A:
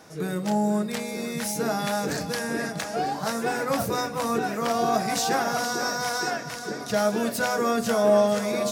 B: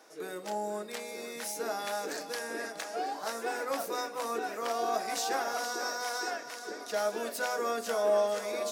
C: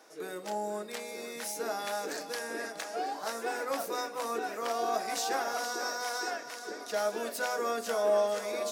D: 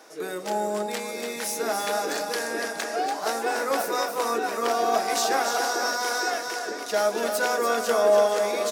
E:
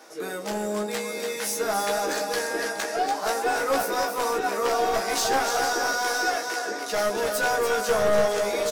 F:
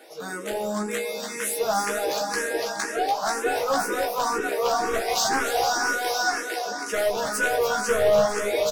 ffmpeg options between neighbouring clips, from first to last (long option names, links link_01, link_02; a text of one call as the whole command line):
ffmpeg -i in.wav -af "highpass=frequency=310:width=0.5412,highpass=frequency=310:width=1.3066,volume=-7dB" out.wav
ffmpeg -i in.wav -af anull out.wav
ffmpeg -i in.wav -af "aecho=1:1:288:0.473,volume=7.5dB" out.wav
ffmpeg -i in.wav -filter_complex "[0:a]aeval=exprs='clip(val(0),-1,0.075)':channel_layout=same,asplit=2[link_01][link_02];[link_02]adelay=15,volume=-4dB[link_03];[link_01][link_03]amix=inputs=2:normalize=0" out.wav
ffmpeg -i in.wav -filter_complex "[0:a]asplit=2[link_01][link_02];[link_02]afreqshift=2[link_03];[link_01][link_03]amix=inputs=2:normalize=1,volume=3.5dB" out.wav